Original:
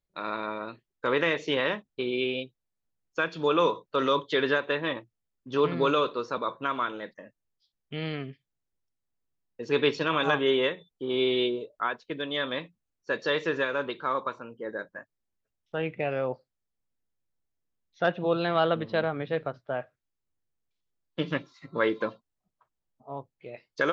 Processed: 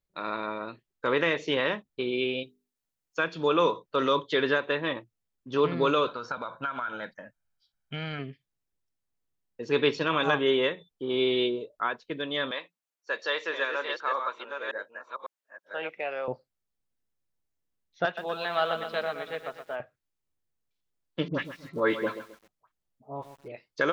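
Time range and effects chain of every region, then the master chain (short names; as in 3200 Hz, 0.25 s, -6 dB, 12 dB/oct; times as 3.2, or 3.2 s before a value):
2.43–3.19 tilt +1.5 dB/oct + notches 50/100/150/200/250/300/350/400/450 Hz
6.07–8.19 bell 1400 Hz +10 dB 0.58 oct + compressor 12:1, threshold -28 dBFS + comb 1.3 ms, depth 54%
12.51–16.28 reverse delay 0.551 s, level -5 dB + HPF 610 Hz
18.05–19.8 HPF 1000 Hz 6 dB/oct + comb 4.7 ms, depth 39% + lo-fi delay 0.121 s, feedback 55%, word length 9-bit, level -8 dB
21.28–23.52 dispersion highs, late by 69 ms, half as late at 1200 Hz + lo-fi delay 0.133 s, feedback 35%, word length 8-bit, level -11 dB
whole clip: dry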